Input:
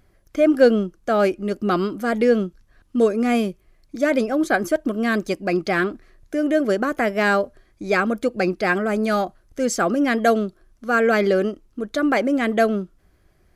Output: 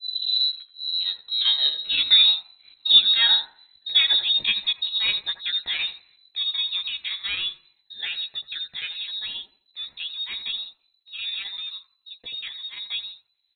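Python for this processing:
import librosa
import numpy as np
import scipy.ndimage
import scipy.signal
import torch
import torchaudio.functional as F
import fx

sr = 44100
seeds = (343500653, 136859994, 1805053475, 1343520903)

p1 = fx.tape_start_head(x, sr, length_s=2.52)
p2 = fx.doppler_pass(p1, sr, speed_mps=17, closest_m=22.0, pass_at_s=2.81)
p3 = fx.chopper(p2, sr, hz=7.6, depth_pct=65, duty_pct=85)
p4 = fx.doubler(p3, sr, ms=14.0, db=-2.5)
p5 = p4 + fx.echo_wet_highpass(p4, sr, ms=84, feedback_pct=31, hz=3000.0, wet_db=-6.0, dry=0)
y = fx.freq_invert(p5, sr, carrier_hz=4000)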